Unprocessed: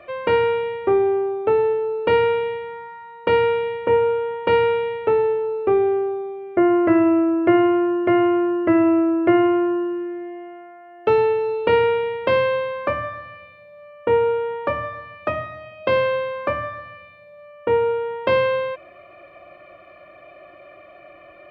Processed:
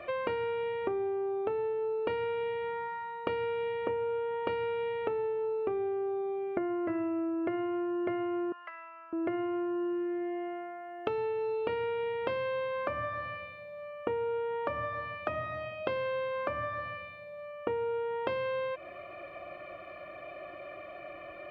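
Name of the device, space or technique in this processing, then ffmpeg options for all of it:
serial compression, leveller first: -filter_complex "[0:a]acompressor=threshold=-20dB:ratio=2.5,acompressor=threshold=-31dB:ratio=6,asettb=1/sr,asplit=3[link_01][link_02][link_03];[link_01]atrim=end=8.524[link_04];[link_02]atrim=start=8.52:end=9.13,asetpts=PTS-STARTPTS,afade=type=in:duration=0.004:curve=qsin,afade=type=out:start_time=0.606:duration=0.004:curve=qsin,highpass=frequency=1000:width=0.5412,highpass=frequency=1000:width=1.3066[link_05];[link_03]atrim=start=9.126[link_06];[link_04][link_05]acrossfade=duration=0.004:curve1=hsin:curve2=qsin[link_07];[link_07][link_06]acrossfade=duration=0.004:curve1=qsin:curve2=hsin"

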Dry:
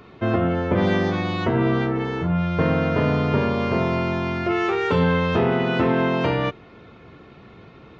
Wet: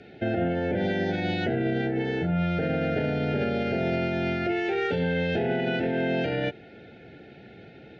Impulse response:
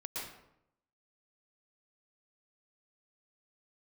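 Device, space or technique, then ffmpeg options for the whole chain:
PA system with an anti-feedback notch: -af "highpass=frequency=140:poles=1,asuperstop=centerf=1100:order=20:qfactor=2.1,lowpass=5000,alimiter=limit=-18.5dB:level=0:latency=1:release=59"

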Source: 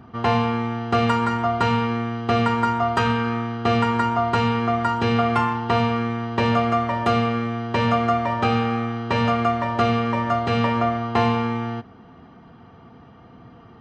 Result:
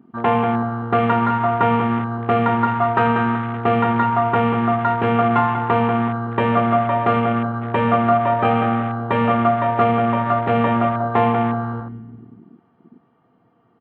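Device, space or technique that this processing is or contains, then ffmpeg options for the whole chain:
over-cleaned archive recording: -filter_complex "[0:a]highpass=170,lowpass=5100,aemphasis=mode=reproduction:type=75fm,asplit=2[link_01][link_02];[link_02]adelay=190,lowpass=frequency=2000:poles=1,volume=-6dB,asplit=2[link_03][link_04];[link_04]adelay=190,lowpass=frequency=2000:poles=1,volume=0.52,asplit=2[link_05][link_06];[link_06]adelay=190,lowpass=frequency=2000:poles=1,volume=0.52,asplit=2[link_07][link_08];[link_08]adelay=190,lowpass=frequency=2000:poles=1,volume=0.52,asplit=2[link_09][link_10];[link_10]adelay=190,lowpass=frequency=2000:poles=1,volume=0.52,asplit=2[link_11][link_12];[link_12]adelay=190,lowpass=frequency=2000:poles=1,volume=0.52[link_13];[link_01][link_03][link_05][link_07][link_09][link_11][link_13]amix=inputs=7:normalize=0,afwtdn=0.0282,volume=3dB"

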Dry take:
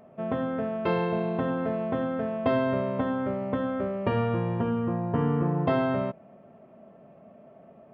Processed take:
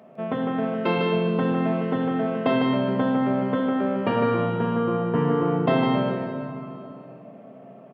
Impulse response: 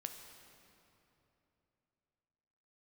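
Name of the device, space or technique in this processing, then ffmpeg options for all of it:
PA in a hall: -filter_complex "[0:a]highpass=frequency=140:width=0.5412,highpass=frequency=140:width=1.3066,equalizer=frequency=3200:width_type=o:width=1.4:gain=3.5,aecho=1:1:154:0.562[link_01];[1:a]atrim=start_sample=2205[link_02];[link_01][link_02]afir=irnorm=-1:irlink=0,volume=6.5dB"

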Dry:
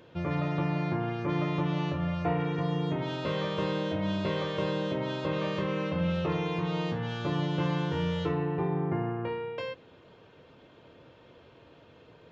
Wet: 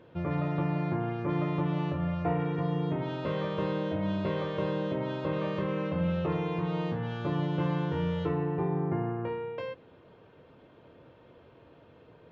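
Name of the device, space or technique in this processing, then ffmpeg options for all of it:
through cloth: -af "highshelf=frequency=3400:gain=-14"

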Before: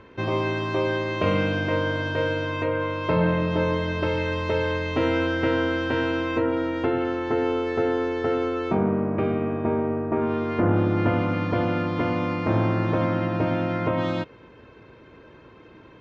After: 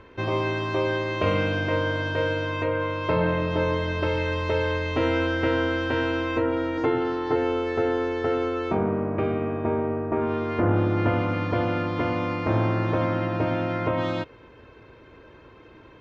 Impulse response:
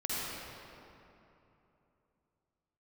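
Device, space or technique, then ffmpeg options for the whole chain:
low shelf boost with a cut just above: -filter_complex "[0:a]lowshelf=frequency=65:gain=6,equalizer=frequency=180:width_type=o:width=1:gain=-5.5,asettb=1/sr,asplit=3[link_01][link_02][link_03];[link_01]atrim=end=6.774[link_04];[link_02]atrim=start=6.77:end=7.36,asetpts=PTS-STARTPTS,afade=type=in:duration=0.004:curve=qsin,afade=type=out:start_time=0.586:duration=0.004:curve=qsin,aecho=1:1:6.6:0.66,atrim=end_sample=26019[link_05];[link_03]atrim=start=7.356[link_06];[link_04][link_05]acrossfade=duration=0.004:curve1=hsin:curve2=qsin[link_07];[link_07][link_06]acrossfade=duration=0.004:curve1=qsin:curve2=hsin"

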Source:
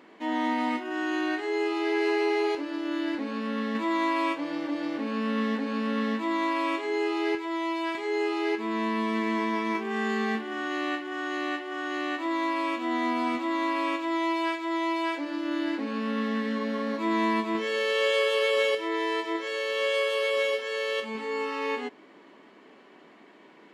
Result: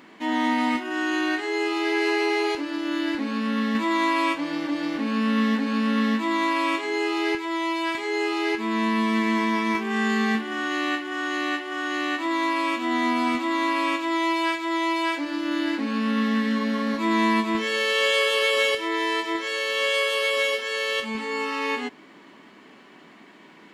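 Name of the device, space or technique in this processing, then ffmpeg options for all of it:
smiley-face EQ: -af "lowshelf=frequency=160:gain=7.5,equalizer=frequency=480:width_type=o:width=1.5:gain=-7,highshelf=frequency=6500:gain=5.5,volume=6dB"

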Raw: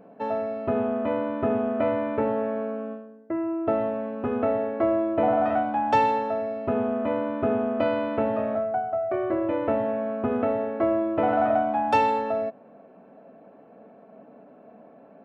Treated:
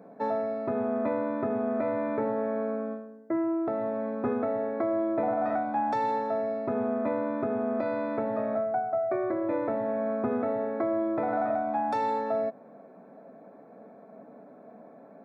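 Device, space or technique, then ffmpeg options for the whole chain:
PA system with an anti-feedback notch: -af "highpass=frequency=110:width=0.5412,highpass=frequency=110:width=1.3066,asuperstop=centerf=2900:order=4:qfactor=2.9,alimiter=limit=-19dB:level=0:latency=1:release=417"

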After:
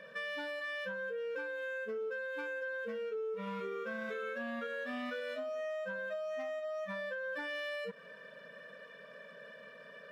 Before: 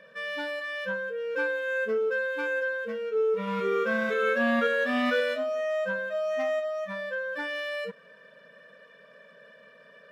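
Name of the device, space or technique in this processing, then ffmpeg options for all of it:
serial compression, peaks first: -af "acompressor=threshold=-33dB:ratio=6,acompressor=threshold=-39dB:ratio=3,volume=1dB"

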